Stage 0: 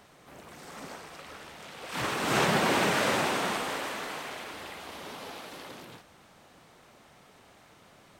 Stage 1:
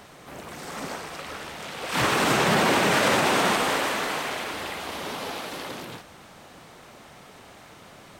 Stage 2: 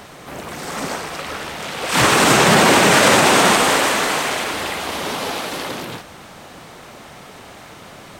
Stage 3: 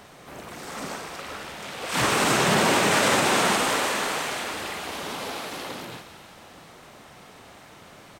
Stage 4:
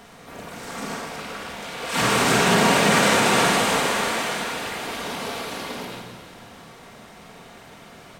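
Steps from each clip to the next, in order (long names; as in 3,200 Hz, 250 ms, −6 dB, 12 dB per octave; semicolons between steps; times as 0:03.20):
brickwall limiter −21 dBFS, peak gain reduction 8 dB; level +9 dB
dynamic equaliser 7,900 Hz, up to +5 dB, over −44 dBFS, Q 1; level +8.5 dB
double-tracking delay 49 ms −11 dB; feedback echo with a high-pass in the loop 181 ms, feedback 67%, level −13 dB; level −9 dB
rectangular room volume 1,600 cubic metres, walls mixed, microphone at 1.7 metres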